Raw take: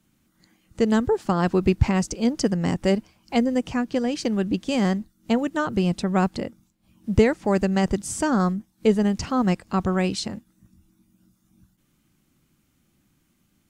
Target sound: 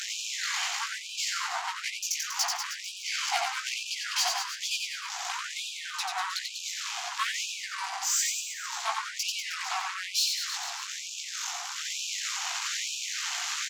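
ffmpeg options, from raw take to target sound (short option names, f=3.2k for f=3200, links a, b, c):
-filter_complex "[0:a]aeval=exprs='val(0)+0.5*0.0447*sgn(val(0))':c=same,highshelf=f=5k:g=4.5,bandreject=f=60:t=h:w=6,bandreject=f=120:t=h:w=6,bandreject=f=180:t=h:w=6,bandreject=f=240:t=h:w=6,bandreject=f=300:t=h:w=6,aresample=16000,aeval=exprs='0.188*(abs(mod(val(0)/0.188+3,4)-2)-1)':c=same,aresample=44100,equalizer=f=190:t=o:w=0.59:g=9.5,asplit=2[a][b];[b]acompressor=threshold=-23dB:ratio=6,volume=2dB[c];[a][c]amix=inputs=2:normalize=0,aeval=exprs='(tanh(10*val(0)+0.4)-tanh(0.4))/10':c=same,flanger=delay=15.5:depth=4:speed=3,aecho=1:1:90|193.5|312.5|449.4|606.8:0.631|0.398|0.251|0.158|0.1,afftfilt=real='re*gte(b*sr/1024,650*pow(2400/650,0.5+0.5*sin(2*PI*1.1*pts/sr)))':imag='im*gte(b*sr/1024,650*pow(2400/650,0.5+0.5*sin(2*PI*1.1*pts/sr)))':win_size=1024:overlap=0.75,volume=2dB"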